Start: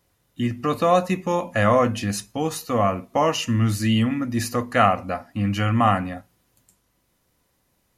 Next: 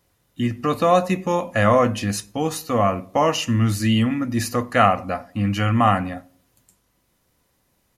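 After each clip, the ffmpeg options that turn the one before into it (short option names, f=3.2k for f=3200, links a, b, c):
-filter_complex "[0:a]asplit=2[a][b];[b]adelay=96,lowpass=f=810:p=1,volume=-20dB,asplit=2[c][d];[d]adelay=96,lowpass=f=810:p=1,volume=0.41,asplit=2[e][f];[f]adelay=96,lowpass=f=810:p=1,volume=0.41[g];[a][c][e][g]amix=inputs=4:normalize=0,volume=1.5dB"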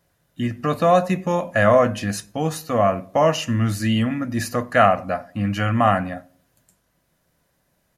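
-af "equalizer=f=160:t=o:w=0.33:g=8,equalizer=f=630:t=o:w=0.33:g=8,equalizer=f=1.6k:t=o:w=0.33:g=7,volume=-2.5dB"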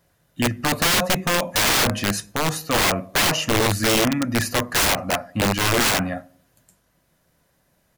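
-af "aeval=exprs='(mod(6.31*val(0)+1,2)-1)/6.31':c=same,volume=2.5dB"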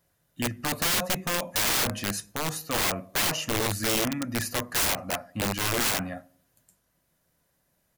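-af "highshelf=f=7.1k:g=6.5,volume=-8.5dB"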